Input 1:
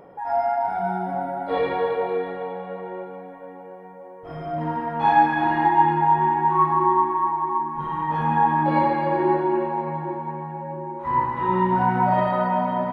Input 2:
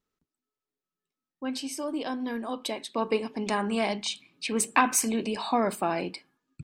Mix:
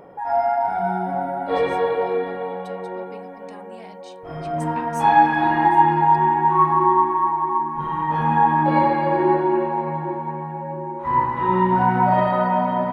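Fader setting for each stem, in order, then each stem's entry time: +2.5, −17.0 decibels; 0.00, 0.00 seconds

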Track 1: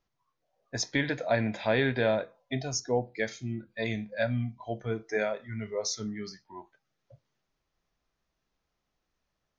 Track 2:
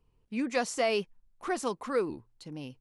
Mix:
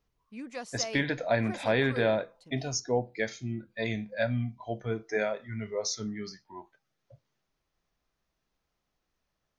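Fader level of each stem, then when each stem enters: 0.0, −10.0 decibels; 0.00, 0.00 seconds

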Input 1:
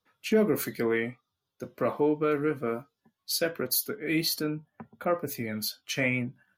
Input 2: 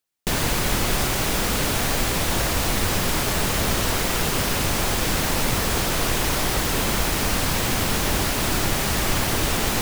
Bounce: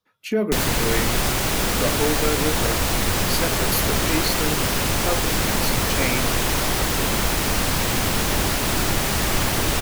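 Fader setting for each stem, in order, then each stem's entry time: +1.5, +1.0 decibels; 0.00, 0.25 seconds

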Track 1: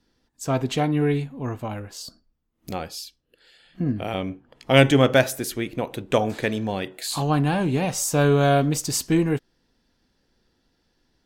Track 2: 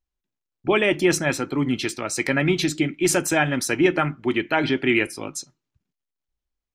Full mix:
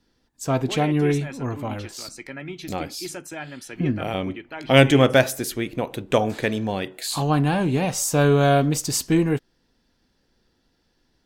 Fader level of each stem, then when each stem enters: +1.0, −14.5 decibels; 0.00, 0.00 seconds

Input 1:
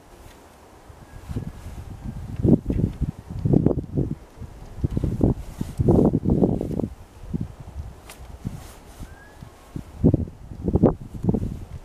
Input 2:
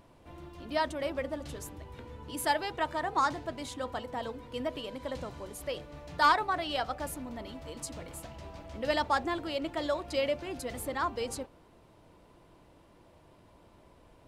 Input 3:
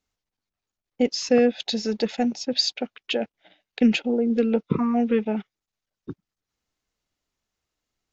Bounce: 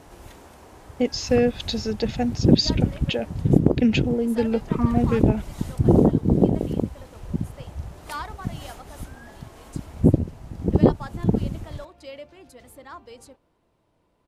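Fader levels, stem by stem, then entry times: +1.0, −9.5, −1.0 decibels; 0.00, 1.90, 0.00 seconds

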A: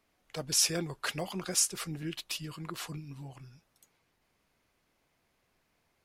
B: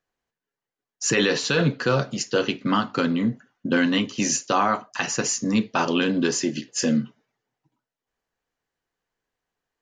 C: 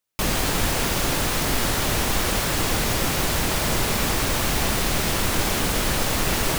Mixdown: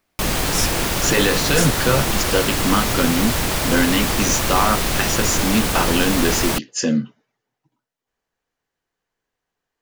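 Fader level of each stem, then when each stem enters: +2.5, +2.5, +2.0 decibels; 0.00, 0.00, 0.00 seconds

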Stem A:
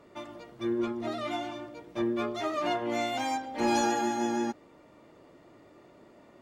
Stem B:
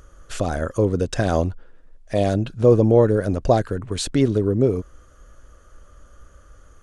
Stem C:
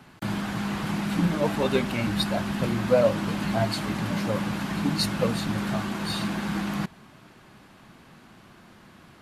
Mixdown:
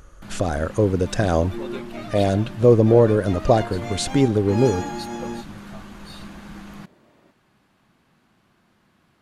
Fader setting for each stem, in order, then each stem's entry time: −2.5, +0.5, −11.0 decibels; 0.90, 0.00, 0.00 seconds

